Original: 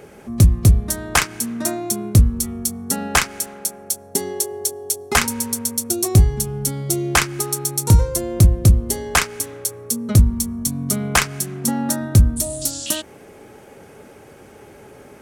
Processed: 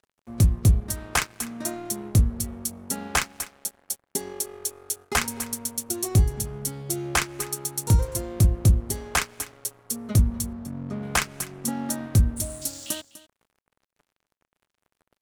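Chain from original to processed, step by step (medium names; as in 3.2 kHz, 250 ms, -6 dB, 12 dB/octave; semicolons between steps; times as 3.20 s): 10.53–11.03 s: low-pass 1.4 kHz 12 dB/octave; crossover distortion -35.5 dBFS; delay 249 ms -17.5 dB; trim -6.5 dB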